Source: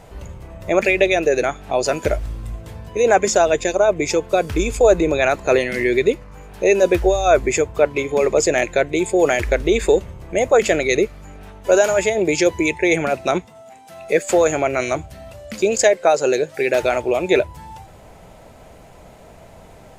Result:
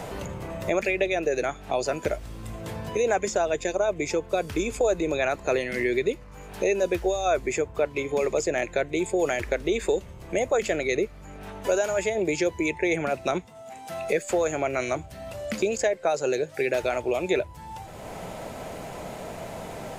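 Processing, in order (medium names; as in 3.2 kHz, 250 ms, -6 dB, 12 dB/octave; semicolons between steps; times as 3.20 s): three bands compressed up and down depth 70%; trim -8.5 dB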